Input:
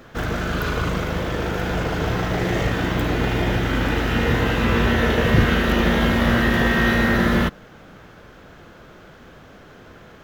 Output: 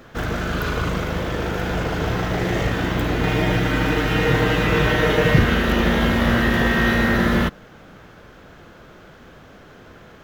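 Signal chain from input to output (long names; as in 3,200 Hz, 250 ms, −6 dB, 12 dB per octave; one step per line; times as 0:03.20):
0:03.23–0:05.39: comb filter 6.5 ms, depth 75%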